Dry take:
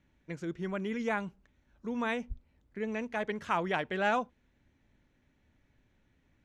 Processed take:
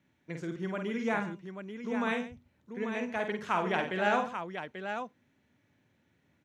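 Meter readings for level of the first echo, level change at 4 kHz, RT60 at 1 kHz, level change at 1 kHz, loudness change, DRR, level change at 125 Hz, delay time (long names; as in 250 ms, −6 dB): −5.5 dB, +1.5 dB, no reverb audible, +1.5 dB, +0.5 dB, no reverb audible, +1.0 dB, 49 ms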